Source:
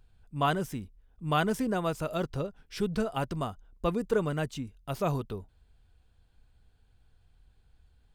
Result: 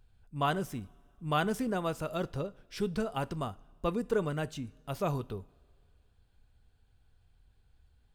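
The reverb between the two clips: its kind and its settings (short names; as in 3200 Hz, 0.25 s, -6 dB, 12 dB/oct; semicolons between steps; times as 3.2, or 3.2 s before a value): two-slope reverb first 0.35 s, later 2.1 s, from -18 dB, DRR 16.5 dB; gain -2.5 dB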